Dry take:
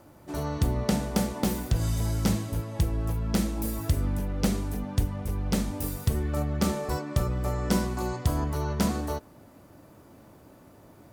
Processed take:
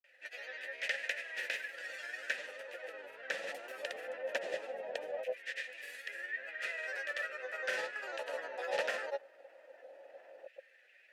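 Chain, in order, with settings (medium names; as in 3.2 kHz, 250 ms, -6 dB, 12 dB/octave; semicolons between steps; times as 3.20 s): LFO high-pass saw down 0.19 Hz 740–2200 Hz; granulator, pitch spread up and down by 3 st; vowel filter e; trim +12.5 dB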